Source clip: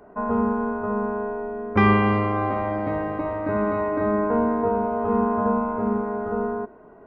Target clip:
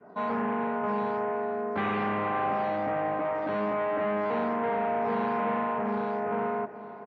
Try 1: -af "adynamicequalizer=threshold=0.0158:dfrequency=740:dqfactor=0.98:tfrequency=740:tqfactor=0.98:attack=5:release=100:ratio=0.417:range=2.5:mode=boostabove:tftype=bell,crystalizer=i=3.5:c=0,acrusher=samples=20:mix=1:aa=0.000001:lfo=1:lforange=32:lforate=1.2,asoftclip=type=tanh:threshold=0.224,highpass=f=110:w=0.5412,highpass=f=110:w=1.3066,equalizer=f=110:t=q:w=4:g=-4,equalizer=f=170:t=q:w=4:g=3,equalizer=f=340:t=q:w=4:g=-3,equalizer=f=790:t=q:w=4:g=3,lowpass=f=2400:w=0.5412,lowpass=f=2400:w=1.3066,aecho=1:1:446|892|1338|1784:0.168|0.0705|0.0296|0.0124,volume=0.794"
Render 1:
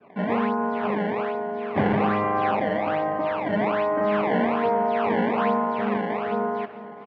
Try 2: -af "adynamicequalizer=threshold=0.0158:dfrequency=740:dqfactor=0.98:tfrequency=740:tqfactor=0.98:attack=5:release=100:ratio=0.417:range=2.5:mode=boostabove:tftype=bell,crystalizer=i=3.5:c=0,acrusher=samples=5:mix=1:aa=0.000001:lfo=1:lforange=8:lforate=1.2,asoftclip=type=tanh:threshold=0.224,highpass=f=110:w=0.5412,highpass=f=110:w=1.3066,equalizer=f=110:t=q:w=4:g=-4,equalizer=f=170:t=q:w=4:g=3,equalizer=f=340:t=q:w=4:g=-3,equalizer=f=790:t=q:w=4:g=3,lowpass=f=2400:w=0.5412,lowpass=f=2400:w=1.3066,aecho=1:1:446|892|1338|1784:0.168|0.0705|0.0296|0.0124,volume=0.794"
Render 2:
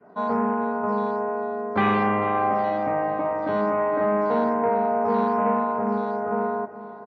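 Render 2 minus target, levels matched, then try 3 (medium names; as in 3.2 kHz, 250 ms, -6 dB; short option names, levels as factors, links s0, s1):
saturation: distortion -9 dB
-af "adynamicequalizer=threshold=0.0158:dfrequency=740:dqfactor=0.98:tfrequency=740:tqfactor=0.98:attack=5:release=100:ratio=0.417:range=2.5:mode=boostabove:tftype=bell,crystalizer=i=3.5:c=0,acrusher=samples=5:mix=1:aa=0.000001:lfo=1:lforange=8:lforate=1.2,asoftclip=type=tanh:threshold=0.0596,highpass=f=110:w=0.5412,highpass=f=110:w=1.3066,equalizer=f=110:t=q:w=4:g=-4,equalizer=f=170:t=q:w=4:g=3,equalizer=f=340:t=q:w=4:g=-3,equalizer=f=790:t=q:w=4:g=3,lowpass=f=2400:w=0.5412,lowpass=f=2400:w=1.3066,aecho=1:1:446|892|1338|1784:0.168|0.0705|0.0296|0.0124,volume=0.794"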